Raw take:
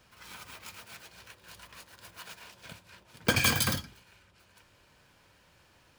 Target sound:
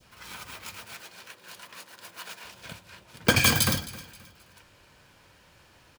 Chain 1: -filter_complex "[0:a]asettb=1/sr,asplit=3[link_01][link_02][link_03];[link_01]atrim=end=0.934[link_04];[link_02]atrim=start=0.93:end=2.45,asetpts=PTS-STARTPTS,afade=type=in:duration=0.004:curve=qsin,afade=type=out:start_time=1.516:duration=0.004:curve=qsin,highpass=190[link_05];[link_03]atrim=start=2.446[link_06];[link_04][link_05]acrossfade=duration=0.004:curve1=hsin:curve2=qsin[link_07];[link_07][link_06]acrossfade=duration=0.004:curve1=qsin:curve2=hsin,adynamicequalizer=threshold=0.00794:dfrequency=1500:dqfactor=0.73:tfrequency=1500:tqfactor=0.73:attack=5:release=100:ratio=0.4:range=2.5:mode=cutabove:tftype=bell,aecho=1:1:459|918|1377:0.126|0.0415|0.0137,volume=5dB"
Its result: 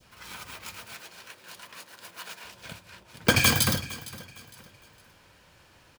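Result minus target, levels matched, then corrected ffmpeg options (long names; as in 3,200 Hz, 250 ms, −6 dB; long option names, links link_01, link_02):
echo 194 ms late
-filter_complex "[0:a]asettb=1/sr,asplit=3[link_01][link_02][link_03];[link_01]atrim=end=0.934[link_04];[link_02]atrim=start=0.93:end=2.45,asetpts=PTS-STARTPTS,afade=type=in:duration=0.004:curve=qsin,afade=type=out:start_time=1.516:duration=0.004:curve=qsin,highpass=190[link_05];[link_03]atrim=start=2.446[link_06];[link_04][link_05]acrossfade=duration=0.004:curve1=hsin:curve2=qsin[link_07];[link_07][link_06]acrossfade=duration=0.004:curve1=qsin:curve2=hsin,adynamicequalizer=threshold=0.00794:dfrequency=1500:dqfactor=0.73:tfrequency=1500:tqfactor=0.73:attack=5:release=100:ratio=0.4:range=2.5:mode=cutabove:tftype=bell,aecho=1:1:265|530|795:0.126|0.0415|0.0137,volume=5dB"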